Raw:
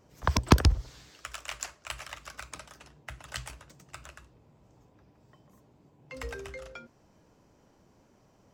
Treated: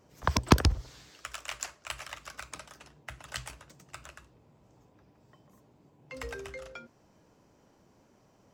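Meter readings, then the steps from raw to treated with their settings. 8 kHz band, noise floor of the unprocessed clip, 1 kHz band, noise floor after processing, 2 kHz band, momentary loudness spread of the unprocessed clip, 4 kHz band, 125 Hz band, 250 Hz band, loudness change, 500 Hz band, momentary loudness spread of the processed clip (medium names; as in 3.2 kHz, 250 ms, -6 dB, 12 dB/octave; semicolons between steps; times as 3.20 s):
0.0 dB, -64 dBFS, 0.0 dB, -65 dBFS, 0.0 dB, 25 LU, 0.0 dB, -2.5 dB, -0.5 dB, -1.5 dB, 0.0 dB, 24 LU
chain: bass shelf 71 Hz -6.5 dB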